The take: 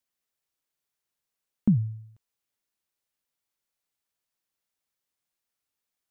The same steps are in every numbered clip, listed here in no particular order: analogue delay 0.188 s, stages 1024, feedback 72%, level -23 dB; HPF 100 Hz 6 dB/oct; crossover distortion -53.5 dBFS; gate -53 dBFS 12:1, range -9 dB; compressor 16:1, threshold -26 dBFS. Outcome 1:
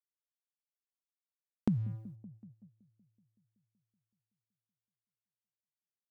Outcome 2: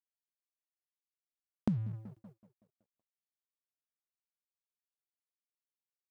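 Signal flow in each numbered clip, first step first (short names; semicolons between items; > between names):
crossover distortion > analogue delay > gate > HPF > compressor; analogue delay > compressor > crossover distortion > gate > HPF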